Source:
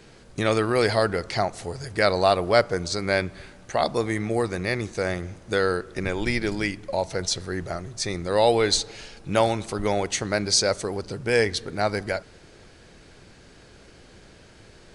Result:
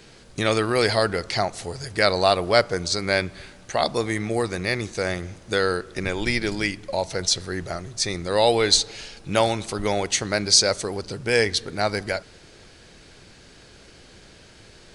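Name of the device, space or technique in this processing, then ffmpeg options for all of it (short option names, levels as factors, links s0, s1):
presence and air boost: -af "equalizer=f=4000:t=o:w=1.9:g=4.5,highshelf=f=9600:g=5.5"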